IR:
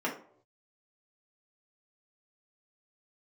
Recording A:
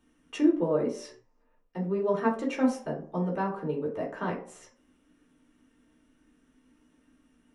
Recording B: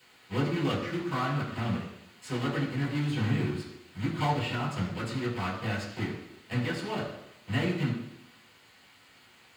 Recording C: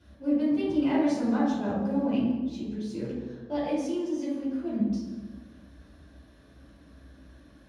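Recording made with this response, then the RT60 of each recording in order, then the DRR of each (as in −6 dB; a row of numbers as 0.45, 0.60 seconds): A; 0.60, 0.85, 1.3 seconds; −4.5, −6.0, −10.5 decibels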